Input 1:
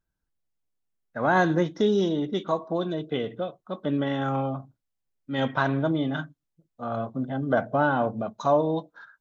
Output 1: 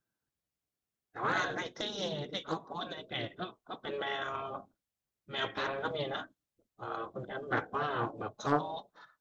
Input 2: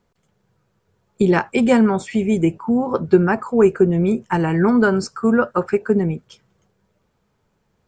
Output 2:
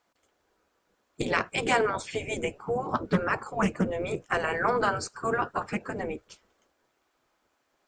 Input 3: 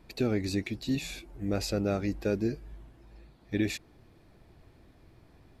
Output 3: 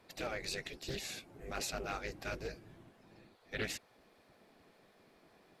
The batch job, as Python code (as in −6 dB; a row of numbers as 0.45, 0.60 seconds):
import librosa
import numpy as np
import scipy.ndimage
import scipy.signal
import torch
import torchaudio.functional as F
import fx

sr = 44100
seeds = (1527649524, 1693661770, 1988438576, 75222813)

y = fx.spec_gate(x, sr, threshold_db=-10, keep='weak')
y = fx.notch(y, sr, hz=920.0, q=23.0)
y = fx.doppler_dist(y, sr, depth_ms=0.34)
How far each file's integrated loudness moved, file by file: −10.0, −11.0, −9.5 LU